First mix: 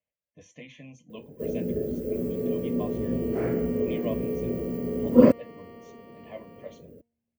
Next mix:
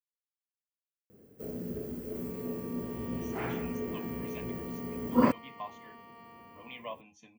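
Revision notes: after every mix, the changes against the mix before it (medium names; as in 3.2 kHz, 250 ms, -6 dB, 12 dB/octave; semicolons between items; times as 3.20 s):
speech: entry +2.80 s; master: add resonant low shelf 700 Hz -7 dB, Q 3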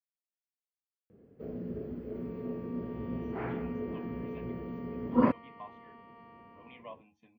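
speech -4.0 dB; master: add distance through air 370 m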